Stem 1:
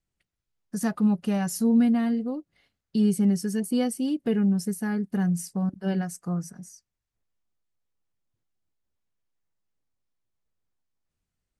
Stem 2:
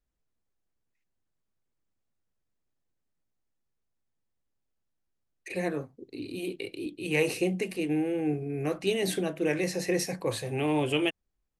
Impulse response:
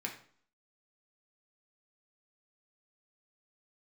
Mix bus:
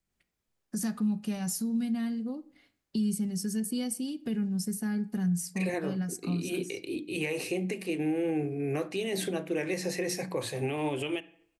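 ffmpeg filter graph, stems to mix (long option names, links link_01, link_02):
-filter_complex "[0:a]acrossover=split=160|3000[link_01][link_02][link_03];[link_02]acompressor=threshold=-37dB:ratio=6[link_04];[link_01][link_04][link_03]amix=inputs=3:normalize=0,volume=-1.5dB,asplit=2[link_05][link_06];[link_06]volume=-7.5dB[link_07];[1:a]highpass=59,bandreject=frequency=60:width_type=h:width=6,bandreject=frequency=120:width_type=h:width=6,bandreject=frequency=180:width_type=h:width=6,bandreject=frequency=240:width_type=h:width=6,bandreject=frequency=300:width_type=h:width=6,bandreject=frequency=360:width_type=h:width=6,adelay=100,volume=1dB,asplit=2[link_08][link_09];[link_09]volume=-12.5dB[link_10];[2:a]atrim=start_sample=2205[link_11];[link_07][link_10]amix=inputs=2:normalize=0[link_12];[link_12][link_11]afir=irnorm=-1:irlink=0[link_13];[link_05][link_08][link_13]amix=inputs=3:normalize=0,alimiter=limit=-22dB:level=0:latency=1:release=259"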